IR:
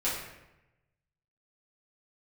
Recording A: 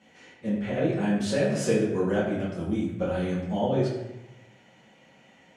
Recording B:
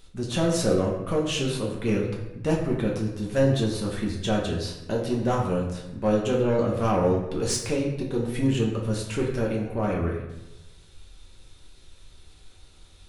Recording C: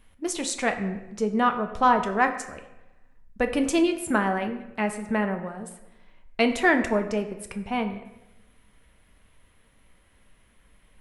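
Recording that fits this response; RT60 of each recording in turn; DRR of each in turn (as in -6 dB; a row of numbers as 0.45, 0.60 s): A; 0.95, 0.95, 0.95 s; -9.5, -2.5, 6.0 dB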